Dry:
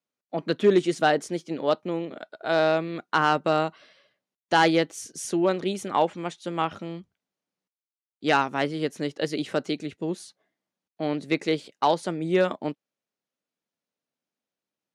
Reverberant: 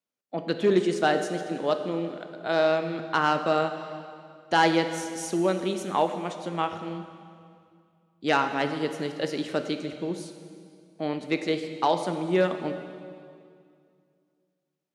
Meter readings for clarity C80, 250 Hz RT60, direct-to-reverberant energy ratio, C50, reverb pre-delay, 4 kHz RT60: 9.5 dB, 2.6 s, 7.0 dB, 8.5 dB, 11 ms, 2.0 s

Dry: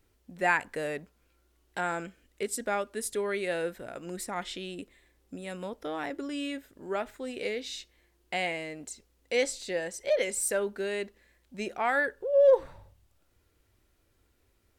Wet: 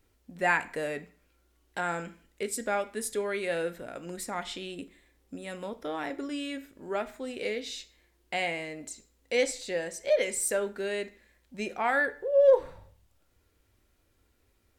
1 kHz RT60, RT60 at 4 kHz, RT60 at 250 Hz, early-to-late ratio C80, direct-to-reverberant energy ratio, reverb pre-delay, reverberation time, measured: 0.50 s, 0.40 s, 0.45 s, 21.0 dB, 10.0 dB, 3 ms, 0.50 s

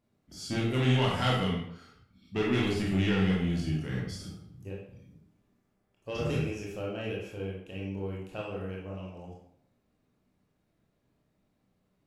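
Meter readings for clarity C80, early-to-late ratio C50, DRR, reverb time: 6.0 dB, 1.5 dB, -4.0 dB, 0.65 s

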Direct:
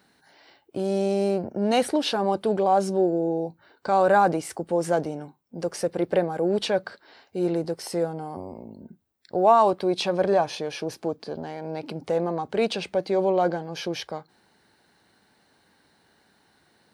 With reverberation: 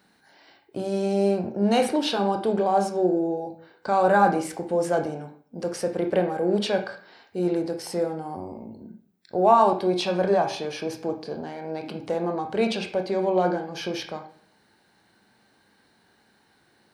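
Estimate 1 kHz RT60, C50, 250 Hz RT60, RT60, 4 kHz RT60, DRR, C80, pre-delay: 0.50 s, 9.0 dB, 0.60 s, 0.55 s, 0.50 s, 4.0 dB, 13.0 dB, 20 ms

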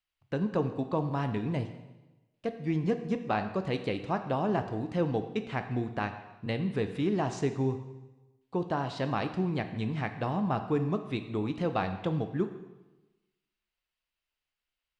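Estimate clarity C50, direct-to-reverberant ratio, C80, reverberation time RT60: 10.0 dB, 7.5 dB, 11.5 dB, 1.1 s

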